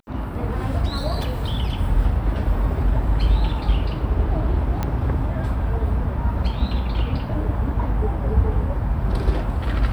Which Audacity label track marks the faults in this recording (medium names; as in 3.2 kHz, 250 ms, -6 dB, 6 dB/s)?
4.830000	4.830000	pop -11 dBFS